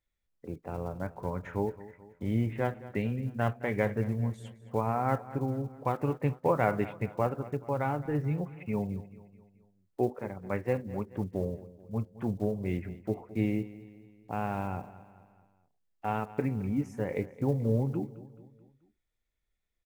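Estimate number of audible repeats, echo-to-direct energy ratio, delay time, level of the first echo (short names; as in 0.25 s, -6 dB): 3, -16.0 dB, 0.216 s, -17.0 dB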